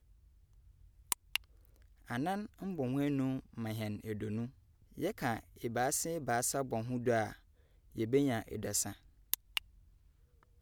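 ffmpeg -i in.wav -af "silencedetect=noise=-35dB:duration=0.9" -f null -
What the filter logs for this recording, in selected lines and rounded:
silence_start: 0.00
silence_end: 1.12 | silence_duration: 1.12
silence_start: 9.58
silence_end: 10.62 | silence_duration: 1.04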